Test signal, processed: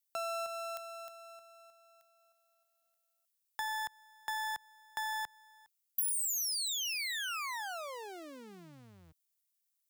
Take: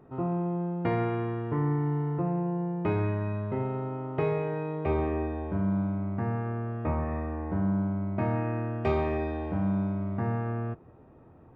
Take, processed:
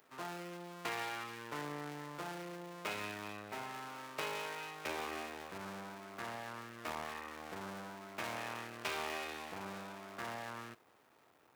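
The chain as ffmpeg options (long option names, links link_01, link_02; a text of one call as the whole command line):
ffmpeg -i in.wav -filter_complex "[0:a]aeval=exprs='max(val(0),0)':channel_layout=same,aderivative,acrossover=split=130[link_01][link_02];[link_02]acompressor=threshold=-48dB:ratio=4[link_03];[link_01][link_03]amix=inputs=2:normalize=0,volume=14dB" out.wav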